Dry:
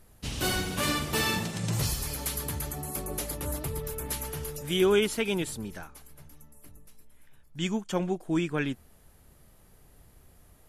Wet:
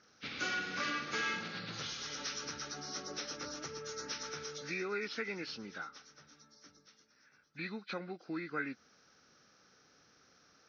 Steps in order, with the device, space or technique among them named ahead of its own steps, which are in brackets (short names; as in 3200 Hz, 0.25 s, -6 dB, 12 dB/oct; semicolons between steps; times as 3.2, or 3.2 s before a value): hearing aid with frequency lowering (nonlinear frequency compression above 1400 Hz 1.5:1; compressor 2.5:1, threshold -34 dBFS, peak gain reduction 10 dB; speaker cabinet 320–6000 Hz, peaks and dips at 380 Hz -6 dB, 650 Hz -9 dB, 950 Hz -9 dB, 1400 Hz +9 dB, 3000 Hz -3 dB, 5300 Hz -3 dB)